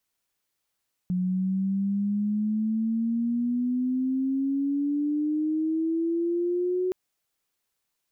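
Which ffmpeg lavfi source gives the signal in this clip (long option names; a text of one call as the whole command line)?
ffmpeg -f lavfi -i "aevalsrc='0.0708*sin(2*PI*180*5.82/log(370/180)*(exp(log(370/180)*t/5.82)-1))':duration=5.82:sample_rate=44100" out.wav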